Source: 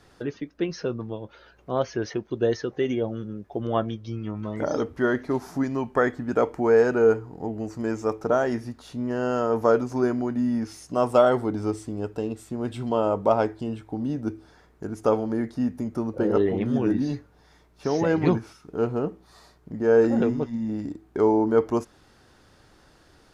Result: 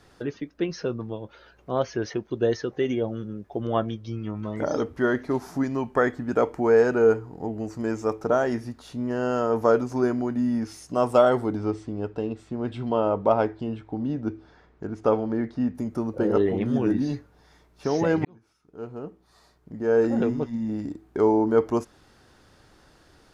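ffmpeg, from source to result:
-filter_complex "[0:a]asettb=1/sr,asplit=3[a][b][c];[a]atrim=end=11.574[d];[b]atrim=start=11.57:end=15.75,asetpts=PTS-STARTPTS,afade=t=in:d=0.004:c=qsin,afade=t=out:st=4.176:d=0.004:c=qsin,lowpass=4.1k[e];[c]atrim=start=15.746[f];[d][e]acrossfade=d=0.004:c1=hsin:c2=qsin[g];[g][f]acrossfade=d=0.004:c1=qsin:c2=hsin,asplit=2[h][i];[h]atrim=end=18.25,asetpts=PTS-STARTPTS,afade=t=out:st=18.246:d=0.004:c=hsin[j];[i]atrim=start=18.25,asetpts=PTS-STARTPTS,afade=t=in:d=2.3[k];[j][k]concat=n=2:v=0:a=1"

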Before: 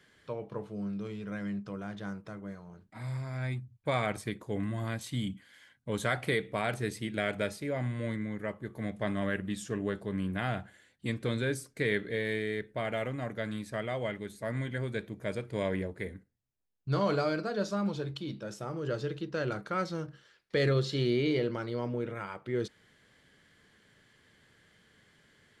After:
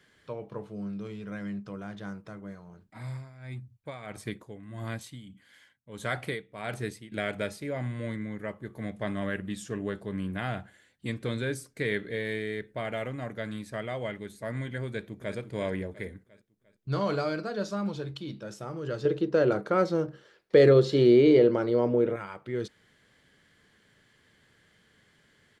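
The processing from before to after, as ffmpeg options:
-filter_complex "[0:a]asettb=1/sr,asplit=3[a][b][c];[a]atrim=end=3.054[d];[b]atrim=start=3.05:end=7.12,asetpts=PTS-STARTPTS,afade=t=in:d=0.004:c=qsin,afade=t=out:st=4.066:d=0.004:c=qsin,tremolo=f=1.6:d=0.81[e];[c]atrim=start=7.116[f];[d][e]acrossfade=d=0.004:c1=hsin:c2=qsin[g];[g][f]acrossfade=d=0.004:c1=qsin:c2=hsin,asplit=2[h][i];[i]afade=t=in:st=14.86:d=0.01,afade=t=out:st=15.36:d=0.01,aecho=0:1:350|700|1050|1400|1750:0.316228|0.142302|0.0640361|0.0288163|0.0129673[j];[h][j]amix=inputs=2:normalize=0,asettb=1/sr,asplit=3[k][l][m];[k]atrim=end=19.054[n];[l]atrim=start=19.05:end=22.16,asetpts=PTS-STARTPTS,afade=t=in:d=0.004:c=qsin,afade=t=out:st=3.106:d=0.004:c=qsin,equalizer=f=450:t=o:w=2.2:g=12[o];[m]atrim=start=22.156[p];[n][o]acrossfade=d=0.004:c1=hsin:c2=qsin[q];[q][p]acrossfade=d=0.004:c1=qsin:c2=hsin"

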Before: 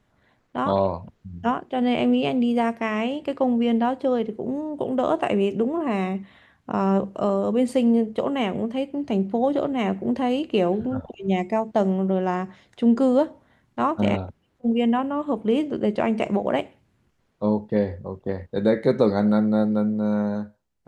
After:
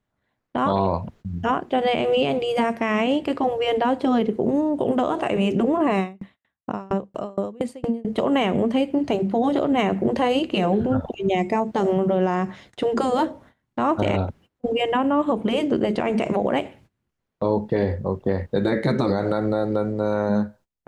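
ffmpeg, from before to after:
-filter_complex "[0:a]asettb=1/sr,asplit=3[a][b][c];[a]atrim=end=5.984[d];[b]atrim=start=5.98:end=8.05,asetpts=PTS-STARTPTS,afade=t=in:d=0.004:c=qsin,afade=t=out:st=2.066:d=0.004:c=qsin,aeval=exprs='val(0)*pow(10,-37*if(lt(mod(4.3*n/s,1),2*abs(4.3)/1000),1-mod(4.3*n/s,1)/(2*abs(4.3)/1000),(mod(4.3*n/s,1)-2*abs(4.3)/1000)/(1-2*abs(4.3)/1000))/20)':c=same[e];[c]atrim=start=8.046[f];[d][e]acrossfade=d=0.004:c1=hsin:c2=qsin[g];[g][f]acrossfade=d=0.004:c1=qsin:c2=hsin,afftfilt=real='re*lt(hypot(re,im),0.708)':imag='im*lt(hypot(re,im),0.708)':win_size=1024:overlap=0.75,agate=range=-20dB:threshold=-54dB:ratio=16:detection=peak,alimiter=limit=-19dB:level=0:latency=1:release=68,volume=8dB"

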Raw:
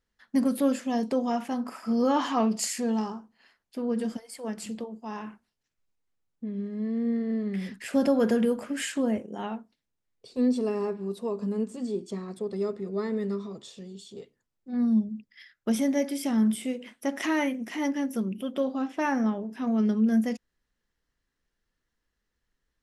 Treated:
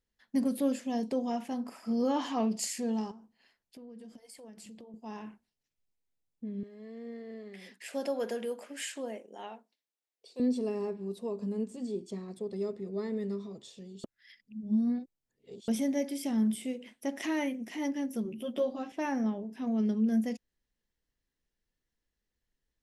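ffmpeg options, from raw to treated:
-filter_complex "[0:a]asettb=1/sr,asplit=3[a][b][c];[a]atrim=end=3.114[d];[b]atrim=start=3.11:end=4.94,asetpts=PTS-STARTPTS,afade=t=in:d=0.004:c=qsin,afade=t=out:st=1.826:d=0.004:c=qsin,acompressor=threshold=-42dB:ratio=6:attack=3.2:release=140:knee=1:detection=peak[e];[c]atrim=start=4.936[f];[d][e]acrossfade=d=0.004:c1=hsin:c2=qsin[g];[g][f]acrossfade=d=0.004:c1=qsin:c2=hsin,asettb=1/sr,asplit=3[h][i][j];[h]atrim=end=6.634[k];[i]atrim=start=6.63:end=10.4,asetpts=PTS-STARTPTS,afade=t=in:d=0.004:c=qsin,afade=t=out:st=3.766:d=0.004:c=qsin,highpass=490[l];[j]atrim=start=10.396[m];[k][l]acrossfade=d=0.004:c1=hsin:c2=qsin[n];[n][m]acrossfade=d=0.004:c1=qsin:c2=hsin,asettb=1/sr,asplit=3[o][p][q];[o]atrim=end=18.244[r];[p]atrim=start=18.24:end=18.92,asetpts=PTS-STARTPTS,afade=t=in:d=0.004:c=qsin,afade=t=out:st=0.676:d=0.004:c=qsin,asplit=2[s][t];[t]adelay=13,volume=-2dB[u];[s][u]amix=inputs=2:normalize=0,atrim=end_sample=29988[v];[q]atrim=start=18.916[w];[r][v]acrossfade=d=0.004:c1=hsin:c2=qsin[x];[x][w]acrossfade=d=0.004:c1=qsin:c2=hsin,asplit=3[y][z][aa];[y]atrim=end=14.042[ab];[z]atrim=start=14.038:end=15.682,asetpts=PTS-STARTPTS,areverse[ac];[aa]atrim=start=15.678[ad];[ab][ac]acrossfade=d=0.004:c1=hsin:c2=hsin[ae];[ae][ad]acrossfade=d=0.004:c1=hsin:c2=hsin,equalizer=f=1.3k:w=1.8:g=-7.5,volume=-4.5dB"

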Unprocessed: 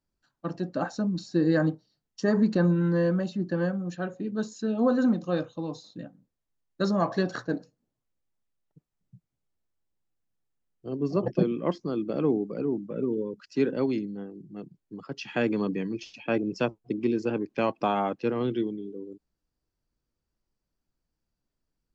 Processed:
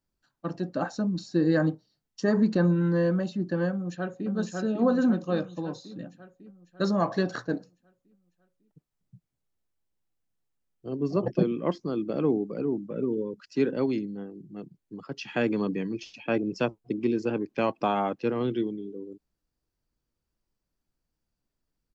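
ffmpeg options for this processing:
-filter_complex "[0:a]asplit=2[a][b];[b]afade=t=in:st=3.71:d=0.01,afade=t=out:st=4.3:d=0.01,aecho=0:1:550|1100|1650|2200|2750|3300|3850|4400:0.794328|0.436881|0.240284|0.132156|0.072686|0.0399773|0.0219875|0.0120931[c];[a][c]amix=inputs=2:normalize=0"

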